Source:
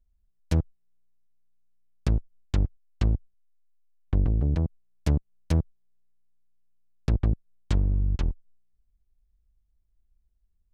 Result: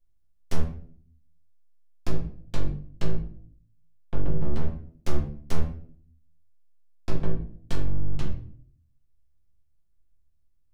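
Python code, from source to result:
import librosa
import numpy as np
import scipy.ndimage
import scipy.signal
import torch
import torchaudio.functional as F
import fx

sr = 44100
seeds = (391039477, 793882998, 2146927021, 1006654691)

y = fx.low_shelf(x, sr, hz=120.0, db=-8.5)
y = np.abs(y)
y = fx.room_shoebox(y, sr, seeds[0], volume_m3=56.0, walls='mixed', distance_m=0.84)
y = y * 10.0 ** (-3.0 / 20.0)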